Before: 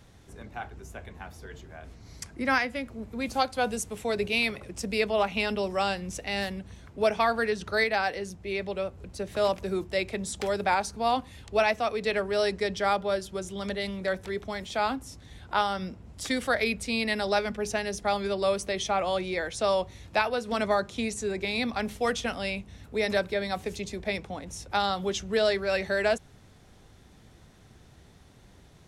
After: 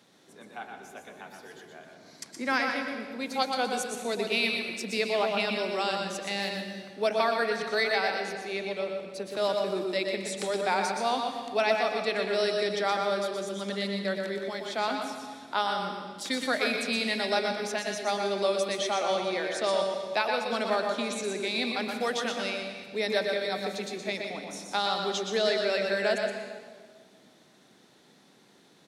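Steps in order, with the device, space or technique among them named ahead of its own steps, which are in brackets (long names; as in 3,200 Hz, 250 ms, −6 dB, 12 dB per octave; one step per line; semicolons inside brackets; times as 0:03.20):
PA in a hall (high-pass filter 190 Hz 24 dB per octave; parametric band 4,000 Hz +5 dB 0.61 octaves; single-tap delay 121 ms −6 dB; convolution reverb RT60 1.6 s, pre-delay 103 ms, DRR 5.5 dB)
level −3 dB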